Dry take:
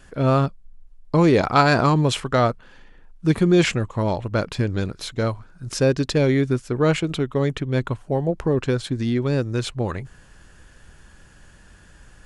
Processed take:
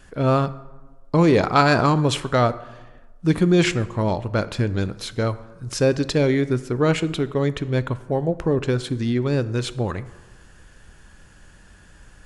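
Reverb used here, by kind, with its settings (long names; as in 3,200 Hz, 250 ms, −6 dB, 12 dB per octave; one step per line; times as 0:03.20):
dense smooth reverb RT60 1.2 s, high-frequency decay 0.55×, DRR 14 dB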